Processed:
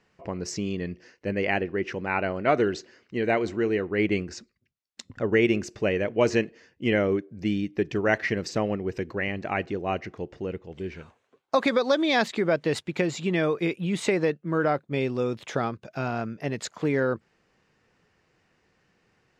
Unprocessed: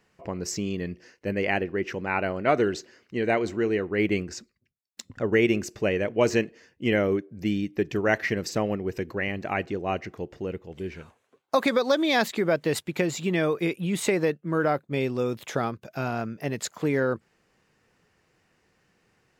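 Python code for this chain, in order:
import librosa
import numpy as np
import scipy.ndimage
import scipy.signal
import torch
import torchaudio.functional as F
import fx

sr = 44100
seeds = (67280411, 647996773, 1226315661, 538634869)

y = scipy.signal.sosfilt(scipy.signal.butter(2, 6400.0, 'lowpass', fs=sr, output='sos'), x)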